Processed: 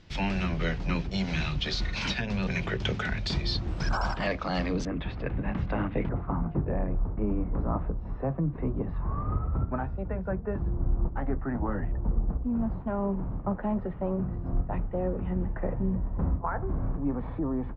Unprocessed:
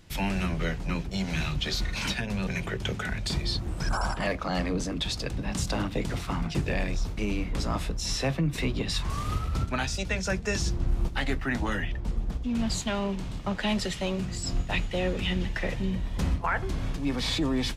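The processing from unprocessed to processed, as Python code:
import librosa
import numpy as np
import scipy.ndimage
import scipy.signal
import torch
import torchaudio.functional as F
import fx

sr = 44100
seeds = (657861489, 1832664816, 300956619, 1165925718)

y = fx.rider(x, sr, range_db=10, speed_s=0.5)
y = fx.lowpass(y, sr, hz=fx.steps((0.0, 5500.0), (4.85, 2200.0), (6.09, 1200.0)), slope=24)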